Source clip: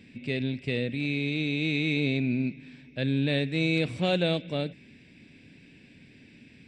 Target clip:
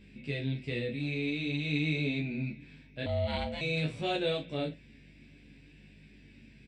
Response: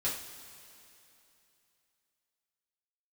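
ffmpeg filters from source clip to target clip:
-filter_complex "[0:a]flanger=delay=19:depth=7.4:speed=0.5,aeval=exprs='val(0)+0.002*(sin(2*PI*50*n/s)+sin(2*PI*2*50*n/s)/2+sin(2*PI*3*50*n/s)/3+sin(2*PI*4*50*n/s)/4+sin(2*PI*5*50*n/s)/5)':c=same,asplit=2[a][b];[b]aecho=0:1:14|51:0.708|0.282[c];[a][c]amix=inputs=2:normalize=0,asettb=1/sr,asplit=3[d][e][f];[d]atrim=end=3.064[g];[e]atrim=start=3.06:end=3.61,asetpts=PTS-STARTPTS,afade=t=in:d=0.004:c=qsin,afade=t=out:st=0.546:d=0.004:c=qsin,aeval=exprs='val(0)*sin(2*PI*370*n/s)':c=same[h];[f]atrim=start=3.606[i];[g][h]acrossfade=d=0.004:c1=hsin:c2=qsin[j];[j][i]acrossfade=d=0.004:c1=qsin:c2=hsin,volume=-3.5dB"

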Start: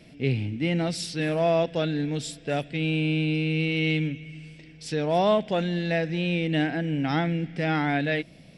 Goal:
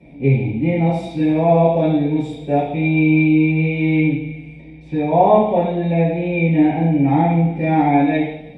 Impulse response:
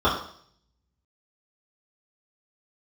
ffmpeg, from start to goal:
-filter_complex "[0:a]asettb=1/sr,asplit=3[a][b][c];[a]atrim=end=4.434[d];[b]atrim=start=4.43:end=7.24,asetpts=PTS-STARTPTS,afade=t=in:d=0.004:c=qsin,afade=t=out:st=2.806:d=0.004:c=qsin,acrossover=split=3900[e][f];[f]acompressor=threshold=-54dB:ratio=4:attack=1:release=60[g];[e][g]amix=inputs=2:normalize=0[h];[c]atrim=start=7.236[i];[d][h]acrossfade=d=0.004:c1=hsin:c2=qsin[j];[j][i]acrossfade=d=0.004:c1=qsin:c2=hsin[k];[1:a]atrim=start_sample=2205,asetrate=29988,aresample=44100[l];[k][l]afir=irnorm=-1:irlink=0,volume=-14.5dB"

